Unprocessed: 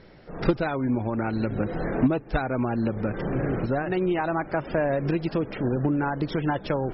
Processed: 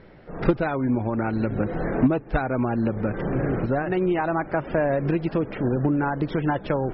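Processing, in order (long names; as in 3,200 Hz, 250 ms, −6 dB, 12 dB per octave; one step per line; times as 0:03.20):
low-pass filter 2,800 Hz 12 dB per octave
level +2 dB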